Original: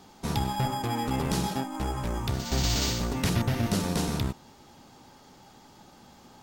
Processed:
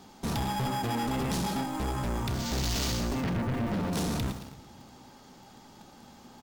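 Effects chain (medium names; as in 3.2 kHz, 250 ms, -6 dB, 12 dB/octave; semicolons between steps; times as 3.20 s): 3.21–3.93 s: low-pass 2.1 kHz 12 dB/octave; feedback delay 112 ms, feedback 49%, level -16 dB; in parallel at -7 dB: bit crusher 7-bit; on the sum: peaking EQ 230 Hz +3.5 dB 0.39 oct; on a send at -23.5 dB: reverberation RT60 0.80 s, pre-delay 4 ms; on the sum: saturation -27 dBFS, distortion -8 dB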